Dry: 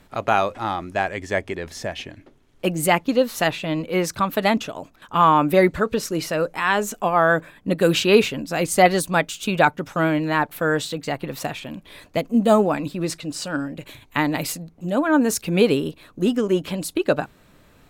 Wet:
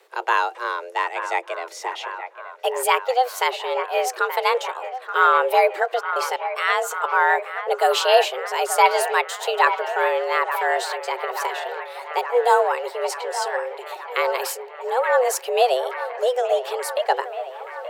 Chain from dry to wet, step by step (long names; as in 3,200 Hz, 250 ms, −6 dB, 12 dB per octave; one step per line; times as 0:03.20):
high-pass filter 120 Hz 24 dB per octave
frequency shifter +250 Hz
0:05.99–0:07.11: gate pattern "xxxxx..xx.." 151 BPM −60 dB
on a send: delay with a band-pass on its return 877 ms, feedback 72%, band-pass 1,200 Hz, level −9.5 dB
on the sum: level −1 dB